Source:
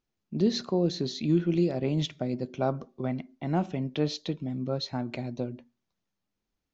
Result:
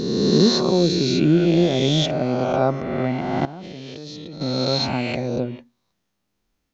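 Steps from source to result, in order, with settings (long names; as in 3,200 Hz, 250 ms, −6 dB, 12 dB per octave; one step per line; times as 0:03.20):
peak hold with a rise ahead of every peak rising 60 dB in 1.90 s
0:03.45–0:04.41: output level in coarse steps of 21 dB
level +6.5 dB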